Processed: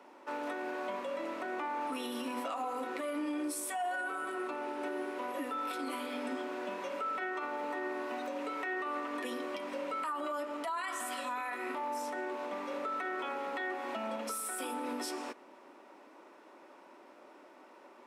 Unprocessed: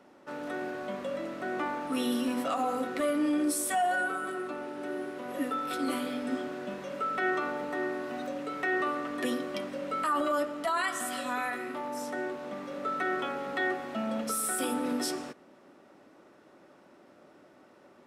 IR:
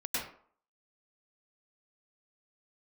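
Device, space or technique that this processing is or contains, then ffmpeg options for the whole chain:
laptop speaker: -af "highpass=f=260:w=0.5412,highpass=f=260:w=1.3066,equalizer=f=960:t=o:w=0.31:g=10,equalizer=f=2.4k:t=o:w=0.48:g=5,alimiter=level_in=5dB:limit=-24dB:level=0:latency=1:release=158,volume=-5dB"

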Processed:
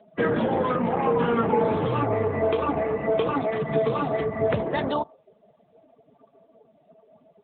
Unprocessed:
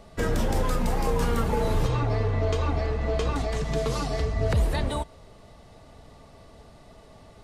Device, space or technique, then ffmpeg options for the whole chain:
mobile call with aggressive noise cancelling: -af "highpass=180,afftdn=nr=22:nf=-41,volume=6.5dB" -ar 8000 -c:a libopencore_amrnb -b:a 10200

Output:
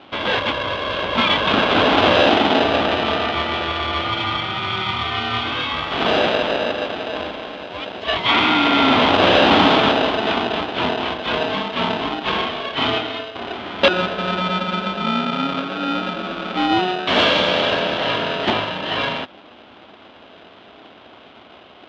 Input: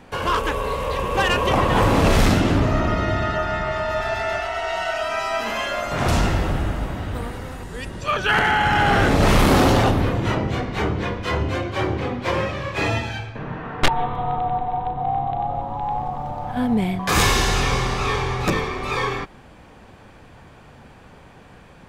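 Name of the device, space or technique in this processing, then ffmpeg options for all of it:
ring modulator pedal into a guitar cabinet: -af "aeval=exprs='val(0)*sgn(sin(2*PI*550*n/s))':c=same,highpass=99,equalizer=f=140:t=q:w=4:g=-9,equalizer=f=260:t=q:w=4:g=4,equalizer=f=470:t=q:w=4:g=-5,equalizer=f=1.8k:t=q:w=4:g=-6,equalizer=f=3.3k:t=q:w=4:g=8,lowpass=f=3.7k:w=0.5412,lowpass=f=3.7k:w=1.3066,volume=2.5dB"

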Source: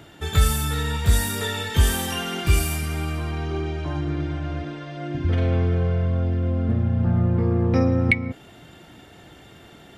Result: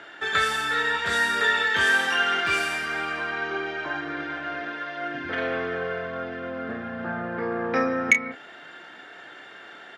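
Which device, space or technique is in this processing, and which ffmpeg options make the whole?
intercom: -filter_complex "[0:a]highpass=440,lowpass=4.7k,equalizer=f=1.6k:t=o:w=0.6:g=12,asoftclip=type=tanh:threshold=-9dB,asplit=2[a][b];[b]adelay=30,volume=-9dB[c];[a][c]amix=inputs=2:normalize=0,volume=1.5dB"

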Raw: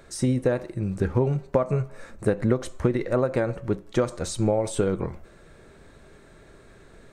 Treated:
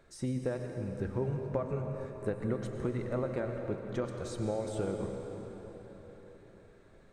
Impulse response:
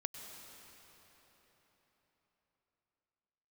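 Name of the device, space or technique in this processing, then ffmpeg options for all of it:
swimming-pool hall: -filter_complex "[1:a]atrim=start_sample=2205[a];[0:a][a]afir=irnorm=-1:irlink=0,highshelf=f=5.8k:g=-6,volume=-9dB"

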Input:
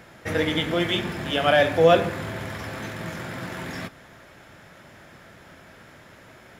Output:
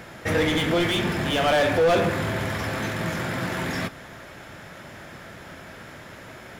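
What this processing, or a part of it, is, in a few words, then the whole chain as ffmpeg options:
saturation between pre-emphasis and de-emphasis: -af "highshelf=f=2.2k:g=11.5,asoftclip=type=tanh:threshold=-21.5dB,highshelf=f=2.2k:g=-11.5,volume=6.5dB"

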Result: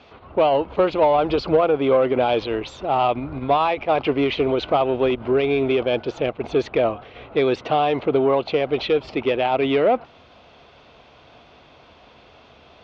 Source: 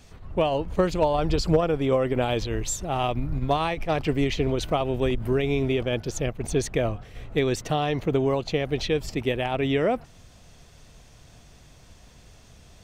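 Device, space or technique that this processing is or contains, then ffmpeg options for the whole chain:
overdrive pedal into a guitar cabinet: -filter_complex "[0:a]asplit=2[a][b];[b]highpass=f=720:p=1,volume=15dB,asoftclip=type=tanh:threshold=-10.5dB[c];[a][c]amix=inputs=2:normalize=0,lowpass=f=1.9k:p=1,volume=-6dB,highpass=78,equalizer=f=110:t=q:w=4:g=-7,equalizer=f=170:t=q:w=4:g=-9,equalizer=f=1.8k:t=q:w=4:g=-9,lowpass=f=3.9k:w=0.5412,lowpass=f=3.9k:w=1.3066,volume=3.5dB"

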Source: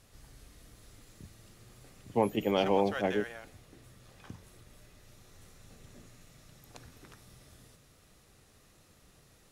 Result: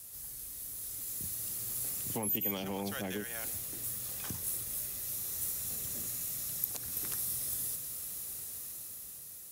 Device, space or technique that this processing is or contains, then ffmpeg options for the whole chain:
FM broadcast chain: -filter_complex "[0:a]highpass=42,dynaudnorm=f=270:g=9:m=8dB,acrossover=split=270|910[a][b][c];[a]acompressor=threshold=-30dB:ratio=4[d];[b]acompressor=threshold=-37dB:ratio=4[e];[c]acompressor=threshold=-38dB:ratio=4[f];[d][e][f]amix=inputs=3:normalize=0,aemphasis=mode=production:type=50fm,alimiter=level_in=1dB:limit=-24dB:level=0:latency=1:release=232,volume=-1dB,asoftclip=type=hard:threshold=-27.5dB,lowpass=f=15k:w=0.5412,lowpass=f=15k:w=1.3066,aemphasis=mode=production:type=50fm,volume=-2.5dB"

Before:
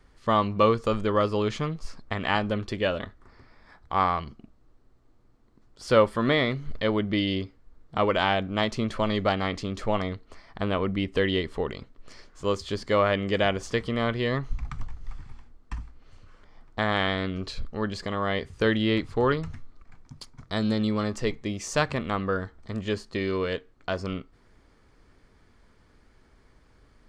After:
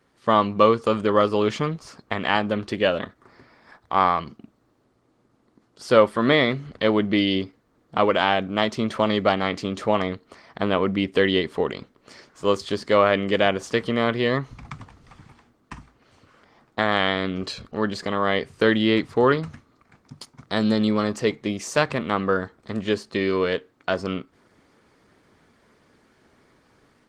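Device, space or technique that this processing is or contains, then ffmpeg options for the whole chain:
video call: -af "highpass=150,dynaudnorm=f=140:g=3:m=6dB" -ar 48000 -c:a libopus -b:a 20k

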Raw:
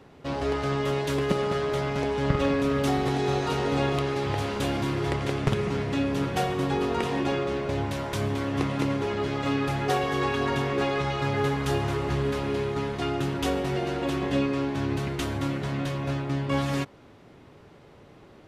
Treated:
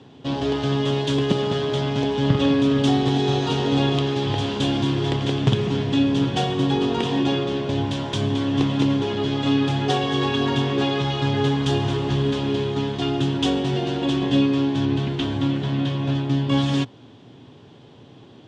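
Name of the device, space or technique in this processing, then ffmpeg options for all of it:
car door speaker: -filter_complex "[0:a]highpass=100,equalizer=f=120:t=q:w=4:g=9,equalizer=f=260:t=q:w=4:g=6,equalizer=f=570:t=q:w=4:g=-4,equalizer=f=1.3k:t=q:w=4:g=-7,equalizer=f=2.1k:t=q:w=4:g=-7,equalizer=f=3.3k:t=q:w=4:g=10,lowpass=f=7.7k:w=0.5412,lowpass=f=7.7k:w=1.3066,asettb=1/sr,asplit=3[a][b][c];[a]atrim=end=14.854[d];[b]atrim=start=14.85:end=16.15,asetpts=PTS-STARTPTS,afade=t=in:d=0.004:c=qsin,afade=t=out:st=1.296:d=0.004:c=qsin,acrossover=split=4200[e][f];[f]acompressor=threshold=-54dB:ratio=4:attack=1:release=60[g];[e][g]amix=inputs=2:normalize=0[h];[c]atrim=start=16.146[i];[d][h]acrossfade=d=0.004:c1=hsin:c2=qsin[j];[j][i]acrossfade=d=0.004:c1=qsin:c2=hsin,volume=3.5dB"

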